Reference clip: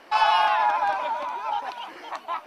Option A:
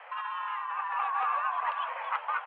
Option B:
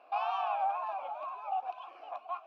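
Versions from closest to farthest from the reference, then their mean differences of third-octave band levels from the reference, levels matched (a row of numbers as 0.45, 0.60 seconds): B, A; 6.5, 8.5 decibels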